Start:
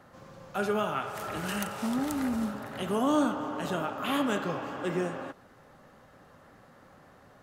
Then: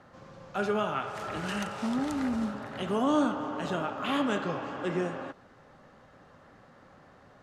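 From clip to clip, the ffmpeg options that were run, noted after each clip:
-af "lowpass=6.5k"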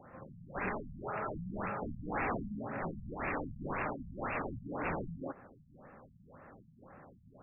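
-af "aeval=exprs='(mod(28.2*val(0)+1,2)-1)/28.2':c=same,afftfilt=real='re*lt(b*sr/1024,210*pow(2800/210,0.5+0.5*sin(2*PI*1.9*pts/sr)))':imag='im*lt(b*sr/1024,210*pow(2800/210,0.5+0.5*sin(2*PI*1.9*pts/sr)))':win_size=1024:overlap=0.75,volume=1dB"

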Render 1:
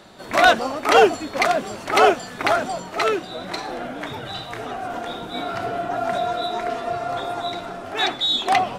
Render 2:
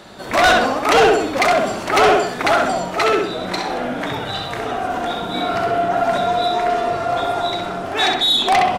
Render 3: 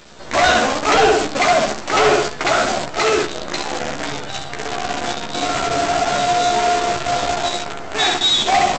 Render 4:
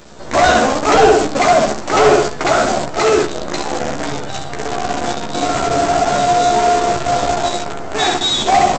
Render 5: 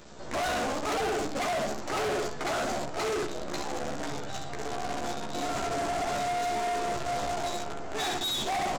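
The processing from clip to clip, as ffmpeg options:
-filter_complex "[0:a]asplit=2[a][b];[b]adelay=65,lowpass=f=4.7k:p=1,volume=-3.5dB,asplit=2[c][d];[d]adelay=65,lowpass=f=4.7k:p=1,volume=0.42,asplit=2[e][f];[f]adelay=65,lowpass=f=4.7k:p=1,volume=0.42,asplit=2[g][h];[h]adelay=65,lowpass=f=4.7k:p=1,volume=0.42,asplit=2[i][j];[j]adelay=65,lowpass=f=4.7k:p=1,volume=0.42[k];[a][c][e][g][i][k]amix=inputs=6:normalize=0,asoftclip=type=tanh:threshold=-14dB,volume=5.5dB"
-filter_complex "[0:a]aresample=16000,acrusher=bits=4:dc=4:mix=0:aa=0.000001,aresample=44100,asplit=2[a][b];[b]adelay=14,volume=-4dB[c];[a][c]amix=inputs=2:normalize=0,volume=-2dB"
-af "equalizer=f=2.9k:w=0.5:g=-7.5,volume=5.5dB"
-af "asoftclip=type=tanh:threshold=-18.5dB,volume=-9dB"

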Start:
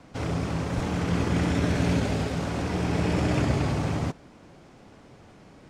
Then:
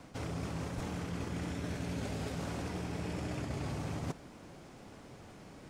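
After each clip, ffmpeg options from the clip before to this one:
-af "highshelf=f=9.4k:g=11.5,areverse,acompressor=threshold=-33dB:ratio=12,areverse,volume=-1.5dB"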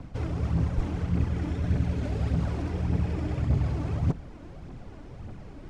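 -af "aemphasis=mode=reproduction:type=bsi,aphaser=in_gain=1:out_gain=1:delay=3.5:decay=0.45:speed=1.7:type=triangular,volume=1.5dB"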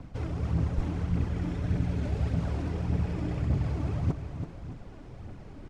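-af "aecho=1:1:331|617:0.355|0.178,volume=-2.5dB"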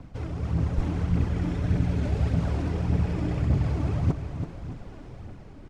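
-af "dynaudnorm=f=140:g=9:m=4dB"

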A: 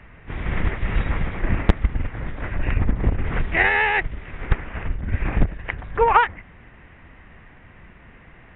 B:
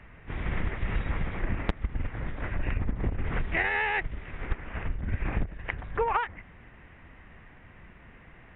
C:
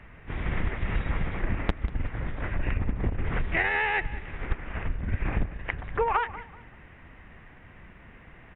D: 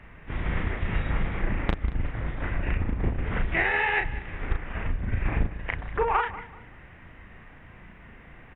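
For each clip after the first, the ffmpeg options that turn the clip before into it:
-af "acompressor=threshold=-19dB:ratio=6,volume=-4.5dB"
-af "aecho=1:1:190|380|570:0.15|0.0419|0.0117,volume=1.5dB"
-filter_complex "[0:a]asplit=2[a][b];[b]adelay=36,volume=-4dB[c];[a][c]amix=inputs=2:normalize=0"

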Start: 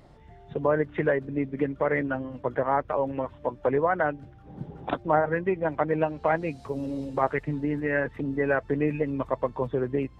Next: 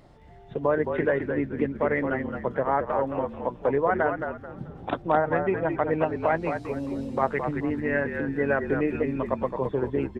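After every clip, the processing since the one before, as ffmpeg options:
-filter_complex "[0:a]bandreject=f=50:t=h:w=6,bandreject=f=100:t=h:w=6,bandreject=f=150:t=h:w=6,asplit=2[a][b];[b]asplit=4[c][d][e][f];[c]adelay=217,afreqshift=-48,volume=-6.5dB[g];[d]adelay=434,afreqshift=-96,volume=-16.7dB[h];[e]adelay=651,afreqshift=-144,volume=-26.8dB[i];[f]adelay=868,afreqshift=-192,volume=-37dB[j];[g][h][i][j]amix=inputs=4:normalize=0[k];[a][k]amix=inputs=2:normalize=0"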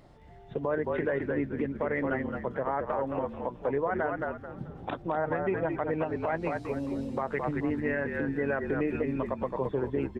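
-af "alimiter=limit=-17.5dB:level=0:latency=1:release=86,volume=-2dB"

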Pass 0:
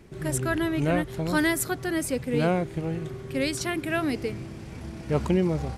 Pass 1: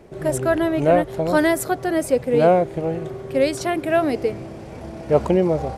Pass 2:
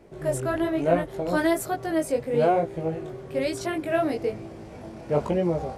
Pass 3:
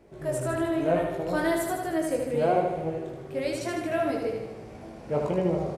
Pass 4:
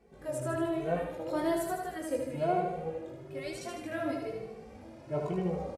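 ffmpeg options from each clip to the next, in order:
-af "equalizer=f=610:t=o:w=1.4:g=13.5"
-af "flanger=delay=17.5:depth=4.8:speed=1.1,volume=-2.5dB"
-af "aecho=1:1:77|154|231|308|385|462|539|616:0.631|0.366|0.212|0.123|0.0714|0.0414|0.024|0.0139,volume=-4dB"
-filter_complex "[0:a]asplit=2[a][b];[b]adelay=2.2,afreqshift=1.1[c];[a][c]amix=inputs=2:normalize=1,volume=-3.5dB"

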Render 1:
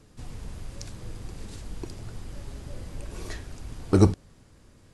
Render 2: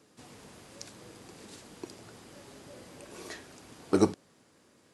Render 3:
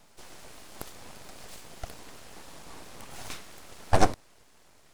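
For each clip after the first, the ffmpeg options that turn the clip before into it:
-af "highpass=250,volume=-2dB"
-af "aeval=exprs='abs(val(0))':c=same,volume=6dB"

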